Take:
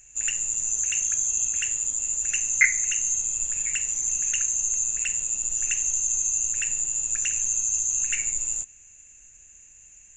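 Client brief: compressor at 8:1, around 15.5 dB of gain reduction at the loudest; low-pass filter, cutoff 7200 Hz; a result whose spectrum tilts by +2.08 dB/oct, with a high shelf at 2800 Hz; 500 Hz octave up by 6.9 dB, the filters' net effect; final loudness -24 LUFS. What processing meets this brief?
LPF 7200 Hz; bell 500 Hz +8.5 dB; high shelf 2800 Hz +3.5 dB; compressor 8:1, threshold -28 dBFS; gain +5 dB

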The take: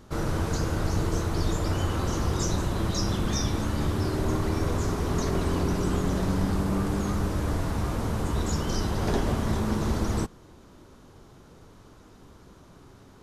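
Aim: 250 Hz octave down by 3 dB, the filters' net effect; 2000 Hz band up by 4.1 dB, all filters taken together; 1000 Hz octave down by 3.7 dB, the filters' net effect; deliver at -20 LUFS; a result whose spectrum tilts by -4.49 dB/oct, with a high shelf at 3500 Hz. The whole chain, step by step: bell 250 Hz -4 dB; bell 1000 Hz -7 dB; bell 2000 Hz +6.5 dB; high shelf 3500 Hz +5.5 dB; gain +8.5 dB

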